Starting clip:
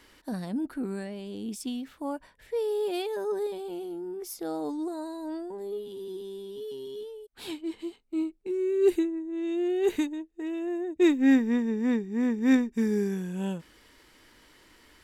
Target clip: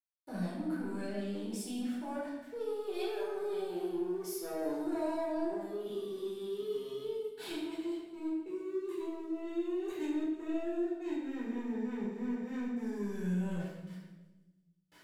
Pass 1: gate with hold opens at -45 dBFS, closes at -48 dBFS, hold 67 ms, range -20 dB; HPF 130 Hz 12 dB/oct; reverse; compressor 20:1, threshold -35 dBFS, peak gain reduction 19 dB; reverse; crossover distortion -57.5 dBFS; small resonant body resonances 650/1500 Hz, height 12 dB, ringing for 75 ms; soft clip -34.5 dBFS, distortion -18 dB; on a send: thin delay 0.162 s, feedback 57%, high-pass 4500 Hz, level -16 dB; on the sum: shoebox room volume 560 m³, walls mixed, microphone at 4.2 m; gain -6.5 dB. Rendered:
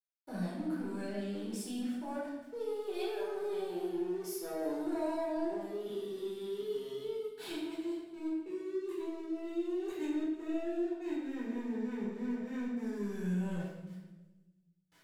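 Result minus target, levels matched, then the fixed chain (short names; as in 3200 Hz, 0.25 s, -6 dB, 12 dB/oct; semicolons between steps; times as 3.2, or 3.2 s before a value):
crossover distortion: distortion +7 dB
gate with hold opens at -45 dBFS, closes at -48 dBFS, hold 67 ms, range -20 dB; HPF 130 Hz 12 dB/oct; reverse; compressor 20:1, threshold -35 dBFS, peak gain reduction 19 dB; reverse; crossover distortion -65 dBFS; small resonant body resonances 650/1500 Hz, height 12 dB, ringing for 75 ms; soft clip -34.5 dBFS, distortion -17 dB; on a send: thin delay 0.162 s, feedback 57%, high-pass 4500 Hz, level -16 dB; on the sum: shoebox room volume 560 m³, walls mixed, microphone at 4.2 m; gain -6.5 dB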